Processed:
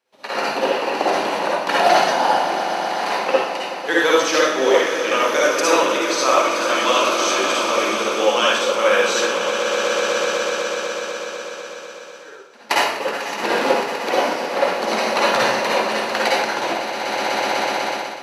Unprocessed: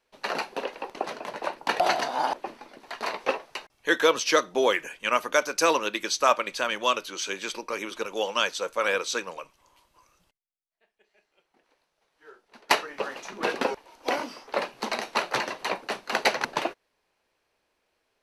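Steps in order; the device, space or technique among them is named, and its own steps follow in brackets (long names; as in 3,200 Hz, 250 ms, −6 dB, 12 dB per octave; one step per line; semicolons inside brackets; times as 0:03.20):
echo that builds up and dies away 124 ms, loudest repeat 5, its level −13.5 dB
far laptop microphone (convolution reverb RT60 0.75 s, pre-delay 47 ms, DRR −5.5 dB; high-pass filter 140 Hz 12 dB per octave; automatic gain control)
level −2.5 dB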